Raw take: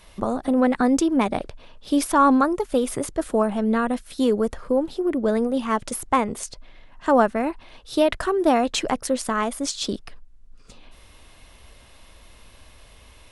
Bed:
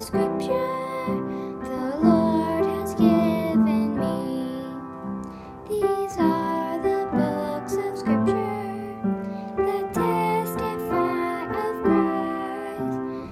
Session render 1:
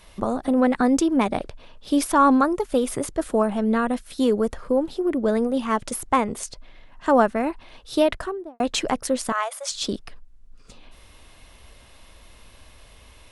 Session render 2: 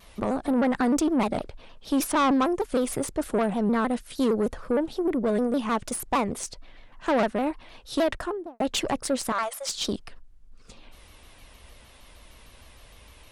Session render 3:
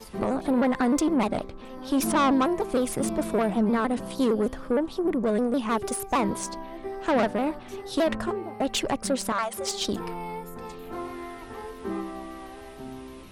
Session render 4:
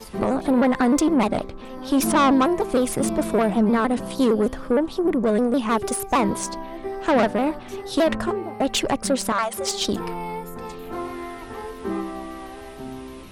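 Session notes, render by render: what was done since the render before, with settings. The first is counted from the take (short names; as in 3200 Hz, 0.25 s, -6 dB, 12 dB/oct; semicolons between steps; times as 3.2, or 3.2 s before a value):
8.01–8.6 studio fade out; 9.32–9.72 elliptic high-pass 550 Hz, stop band 50 dB
tube stage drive 18 dB, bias 0.35; shaped vibrato saw down 6.5 Hz, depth 160 cents
add bed -12.5 dB
gain +4.5 dB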